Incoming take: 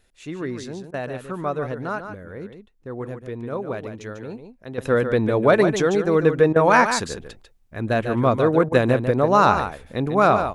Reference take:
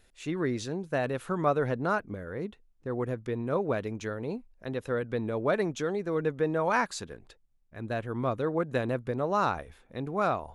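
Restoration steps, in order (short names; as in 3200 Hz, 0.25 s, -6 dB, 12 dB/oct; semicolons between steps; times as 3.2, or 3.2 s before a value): interpolate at 0.91/6.53/8.69, 27 ms; inverse comb 0.146 s -8.5 dB; gain correction -11 dB, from 4.78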